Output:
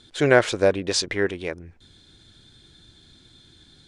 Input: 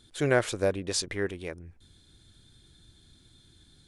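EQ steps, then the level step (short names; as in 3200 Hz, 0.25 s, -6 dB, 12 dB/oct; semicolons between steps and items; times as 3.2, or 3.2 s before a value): LPF 6200 Hz 12 dB/oct; low shelf 150 Hz -8 dB; notch 1200 Hz, Q 23; +8.5 dB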